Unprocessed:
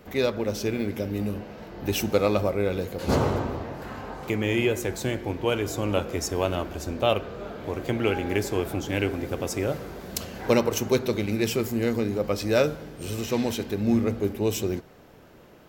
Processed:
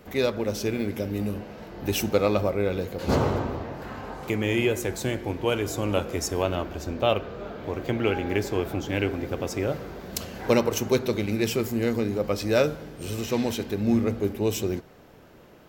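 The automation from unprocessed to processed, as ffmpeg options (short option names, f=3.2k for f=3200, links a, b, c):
-af "asetnsamples=n=441:p=0,asendcmd='2.09 equalizer g -4.5;4.03 equalizer g 1.5;6.42 equalizer g -8;10.13 equalizer g -1',equalizer=f=10k:t=o:w=0.99:g=2"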